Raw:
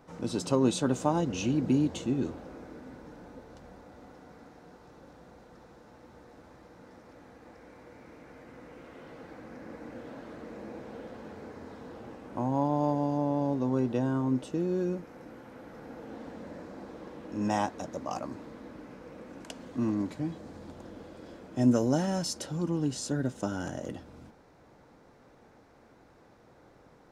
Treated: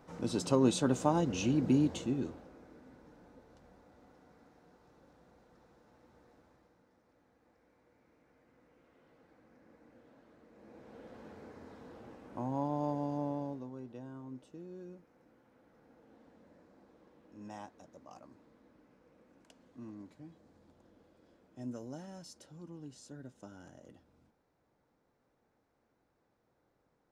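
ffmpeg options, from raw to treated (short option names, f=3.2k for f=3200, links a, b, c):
-af "volume=9dB,afade=t=out:st=1.87:d=0.64:silence=0.375837,afade=t=out:st=6.28:d=0.6:silence=0.421697,afade=t=in:st=10.52:d=0.7:silence=0.281838,afade=t=out:st=13.25:d=0.46:silence=0.266073"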